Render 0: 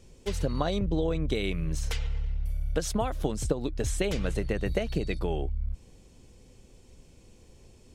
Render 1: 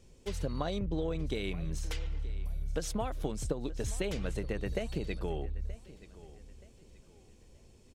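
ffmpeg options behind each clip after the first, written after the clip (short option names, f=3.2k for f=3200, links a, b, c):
-filter_complex "[0:a]asplit=2[a][b];[b]asoftclip=type=tanh:threshold=-29.5dB,volume=-11.5dB[c];[a][c]amix=inputs=2:normalize=0,aecho=1:1:926|1852|2778:0.126|0.0441|0.0154,volume=-7dB"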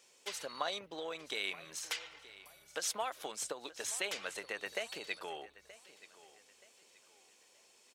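-af "highpass=940,volume=5dB"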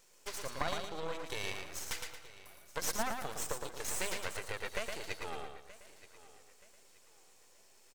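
-filter_complex "[0:a]equalizer=f=3.1k:w=1.2:g=-7,aeval=exprs='max(val(0),0)':c=same,asplit=2[a][b];[b]aecho=0:1:113|226|339|452:0.562|0.186|0.0612|0.0202[c];[a][c]amix=inputs=2:normalize=0,volume=5.5dB"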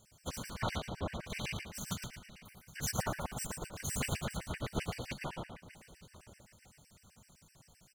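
-af "aeval=exprs='val(0)*sin(2*PI*120*n/s)':c=same,afftfilt=real='hypot(re,im)*cos(2*PI*random(0))':imag='hypot(re,im)*sin(2*PI*random(1))':win_size=512:overlap=0.75,afftfilt=real='re*gt(sin(2*PI*7.8*pts/sr)*(1-2*mod(floor(b*sr/1024/1500),2)),0)':imag='im*gt(sin(2*PI*7.8*pts/sr)*(1-2*mod(floor(b*sr/1024/1500),2)),0)':win_size=1024:overlap=0.75,volume=11dB"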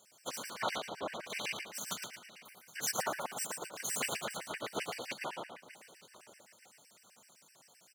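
-af "highpass=390,volume=3dB"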